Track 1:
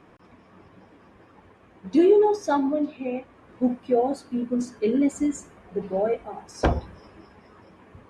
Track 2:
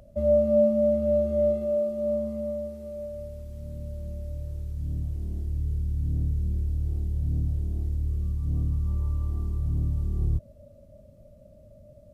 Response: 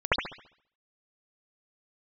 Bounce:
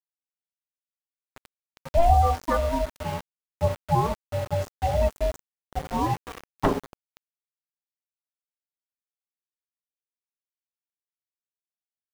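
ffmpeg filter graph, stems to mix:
-filter_complex "[0:a]volume=2dB[a];[1:a]acompressor=threshold=-33dB:ratio=8,adelay=1200,volume=-5.5dB[b];[a][b]amix=inputs=2:normalize=0,lowpass=f=3.2k:p=1,aeval=exprs='val(0)*sin(2*PI*340*n/s)':c=same,aeval=exprs='val(0)*gte(abs(val(0)),0.0251)':c=same"

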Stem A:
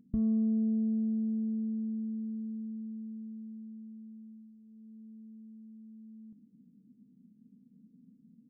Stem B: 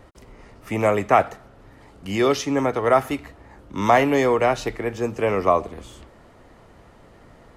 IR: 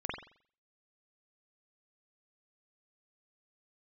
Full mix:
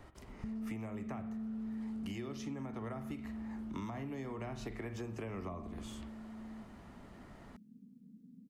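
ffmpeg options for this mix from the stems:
-filter_complex "[0:a]acompressor=threshold=-44dB:ratio=2,adelay=300,volume=2dB[a];[1:a]equalizer=f=500:t=o:w=0.26:g=-8.5,acrossover=split=250[b][c];[c]acompressor=threshold=-32dB:ratio=6[d];[b][d]amix=inputs=2:normalize=0,volume=-7.5dB,asplit=2[e][f];[f]volume=-11.5dB[g];[2:a]atrim=start_sample=2205[h];[g][h]afir=irnorm=-1:irlink=0[i];[a][e][i]amix=inputs=3:normalize=0,acompressor=threshold=-38dB:ratio=12"

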